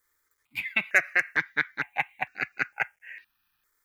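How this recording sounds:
a quantiser's noise floor 12 bits, dither none
notches that jump at a steady rate 2.2 Hz 710–3,300 Hz

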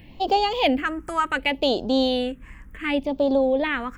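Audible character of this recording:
phaser sweep stages 4, 0.68 Hz, lowest notch 660–1,900 Hz

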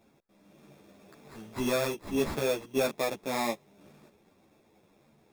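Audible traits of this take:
aliases and images of a low sample rate 3,000 Hz, jitter 0%
a shimmering, thickened sound

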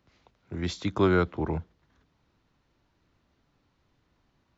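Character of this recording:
background noise floor −72 dBFS
spectral slope −6.0 dB per octave

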